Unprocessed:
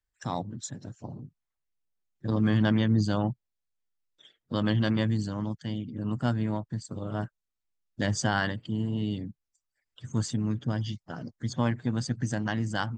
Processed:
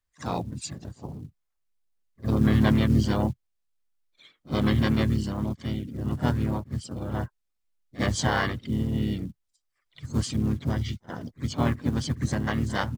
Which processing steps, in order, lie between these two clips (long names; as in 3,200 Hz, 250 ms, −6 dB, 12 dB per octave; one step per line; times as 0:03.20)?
floating-point word with a short mantissa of 4 bits
echo ahead of the sound 56 ms −19.5 dB
pitch-shifted copies added −7 semitones −3 dB, +3 semitones −6 dB